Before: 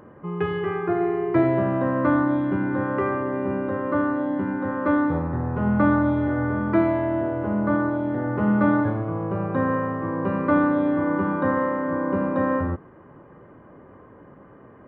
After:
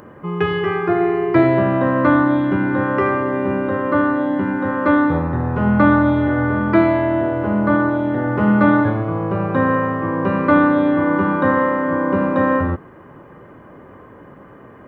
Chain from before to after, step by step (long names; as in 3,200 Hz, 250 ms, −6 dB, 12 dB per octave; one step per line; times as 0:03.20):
high-shelf EQ 2,700 Hz +11.5 dB
level +5.5 dB